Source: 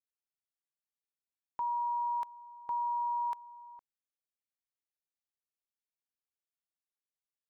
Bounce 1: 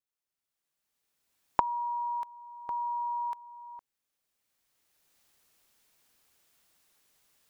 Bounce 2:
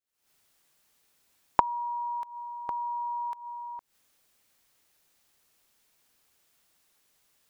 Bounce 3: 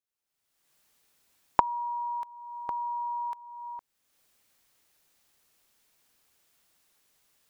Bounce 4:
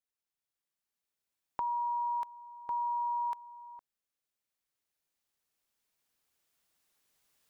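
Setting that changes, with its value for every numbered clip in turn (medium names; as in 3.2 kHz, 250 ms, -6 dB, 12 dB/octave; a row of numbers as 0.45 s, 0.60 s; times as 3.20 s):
recorder AGC, rising by: 14 dB/s, 88 dB/s, 35 dB/s, 5.3 dB/s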